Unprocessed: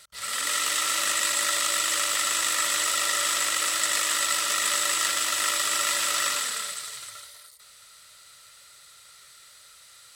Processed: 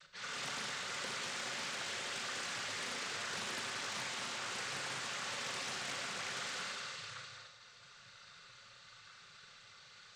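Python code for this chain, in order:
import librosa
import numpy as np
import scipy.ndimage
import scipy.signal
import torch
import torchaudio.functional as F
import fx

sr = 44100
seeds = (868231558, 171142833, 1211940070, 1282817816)

p1 = scipy.signal.sosfilt(scipy.signal.butter(2, 3900.0, 'lowpass', fs=sr, output='sos'), x)
p2 = fx.low_shelf(p1, sr, hz=130.0, db=11.5)
p3 = fx.over_compress(p2, sr, threshold_db=-34.0, ratio=-1.0)
p4 = p2 + (p3 * 10.0 ** (2.0 / 20.0))
p5 = fx.cheby_harmonics(p4, sr, harmonics=(3,), levels_db=(-7,), full_scale_db=-9.5)
p6 = fx.noise_vocoder(p5, sr, seeds[0], bands=16)
p7 = fx.dmg_noise_colour(p6, sr, seeds[1], colour='brown', level_db=-78.0)
p8 = fx.notch_comb(p7, sr, f0_hz=320.0)
p9 = 10.0 ** (-30.5 / 20.0) * np.tanh(p8 / 10.0 ** (-30.5 / 20.0))
p10 = p9 + fx.echo_single(p9, sr, ms=209, db=-9.0, dry=0)
p11 = fx.rev_schroeder(p10, sr, rt60_s=0.93, comb_ms=30, drr_db=3.0)
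p12 = fx.doppler_dist(p11, sr, depth_ms=0.45)
y = p12 * 10.0 ** (-3.0 / 20.0)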